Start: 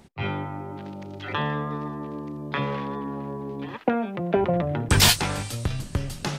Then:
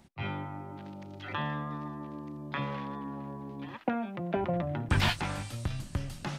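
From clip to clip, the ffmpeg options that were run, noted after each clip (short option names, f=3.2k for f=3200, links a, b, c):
-filter_complex "[0:a]acrossover=split=3300[a][b];[b]acompressor=threshold=-40dB:ratio=4:attack=1:release=60[c];[a][c]amix=inputs=2:normalize=0,equalizer=f=440:t=o:w=0.22:g=-12,volume=-6.5dB"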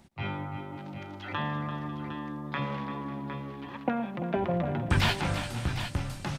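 -af "aecho=1:1:115|163|341|544|758:0.106|0.119|0.266|0.112|0.316,volume=1.5dB"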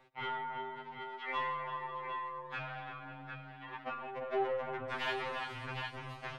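-filter_complex "[0:a]aeval=exprs='(tanh(35.5*val(0)+0.25)-tanh(0.25))/35.5':c=same,acrossover=split=400 3300:gain=0.158 1 0.0794[a][b][c];[a][b][c]amix=inputs=3:normalize=0,afftfilt=real='re*2.45*eq(mod(b,6),0)':imag='im*2.45*eq(mod(b,6),0)':win_size=2048:overlap=0.75,volume=4dB"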